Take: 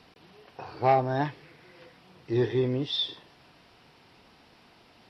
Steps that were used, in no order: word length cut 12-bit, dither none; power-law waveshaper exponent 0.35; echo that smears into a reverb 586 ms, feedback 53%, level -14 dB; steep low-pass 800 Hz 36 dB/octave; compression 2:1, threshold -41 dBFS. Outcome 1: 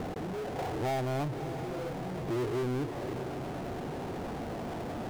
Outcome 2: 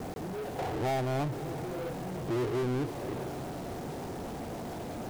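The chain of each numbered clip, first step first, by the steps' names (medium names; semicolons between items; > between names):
word length cut > steep low-pass > power-law waveshaper > echo that smears into a reverb > compression; steep low-pass > compression > word length cut > power-law waveshaper > echo that smears into a reverb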